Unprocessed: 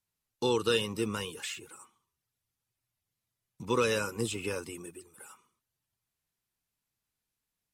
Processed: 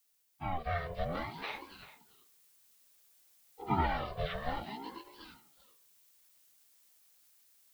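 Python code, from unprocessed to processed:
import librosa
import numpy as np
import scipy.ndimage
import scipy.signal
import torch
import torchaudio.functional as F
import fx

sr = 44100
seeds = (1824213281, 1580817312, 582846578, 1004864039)

p1 = fx.partial_stretch(x, sr, pct=75)
p2 = fx.high_shelf(p1, sr, hz=3500.0, db=-10.0)
p3 = fx.dmg_noise_colour(p2, sr, seeds[0], colour='blue', level_db=-67.0)
p4 = fx.rider(p3, sr, range_db=4, speed_s=0.5)
p5 = p4 + fx.echo_single(p4, sr, ms=390, db=-15.5, dry=0)
y = fx.ring_lfo(p5, sr, carrier_hz=490.0, swing_pct=40, hz=0.59)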